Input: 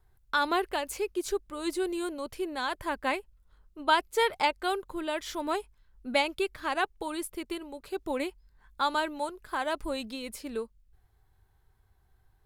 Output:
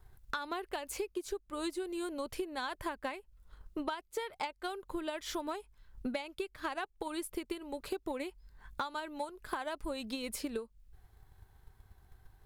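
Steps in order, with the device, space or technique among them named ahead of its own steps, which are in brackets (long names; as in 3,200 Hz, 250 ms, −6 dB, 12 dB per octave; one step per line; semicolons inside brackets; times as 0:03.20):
drum-bus smash (transient designer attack +7 dB, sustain 0 dB; downward compressor 16 to 1, threshold −38 dBFS, peak gain reduction 24.5 dB; soft clipping −27.5 dBFS, distortion −24 dB)
level +4.5 dB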